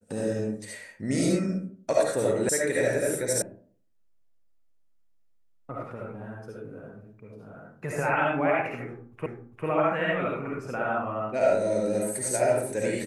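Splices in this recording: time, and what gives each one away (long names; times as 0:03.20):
0:02.49: cut off before it has died away
0:03.42: cut off before it has died away
0:09.26: the same again, the last 0.4 s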